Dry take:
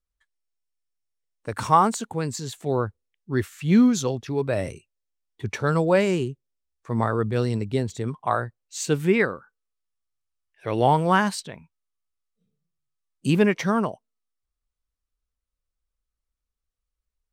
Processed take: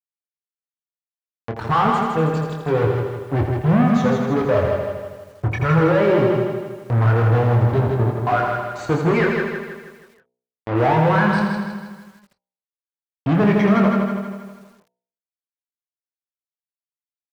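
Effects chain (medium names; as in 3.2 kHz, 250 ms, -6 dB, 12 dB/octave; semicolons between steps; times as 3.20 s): expander on every frequency bin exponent 2; fuzz box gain 40 dB, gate -39 dBFS; low-pass 1.6 kHz 12 dB/octave; expander -48 dBFS; high-pass 45 Hz 12 dB/octave; doubling 25 ms -5.5 dB; de-hum 61.35 Hz, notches 16; on a send: feedback delay 159 ms, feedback 48%, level -5 dB; on the sum: loudness maximiser +6 dB; bit-crushed delay 82 ms, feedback 55%, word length 7-bit, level -7 dB; trim -7.5 dB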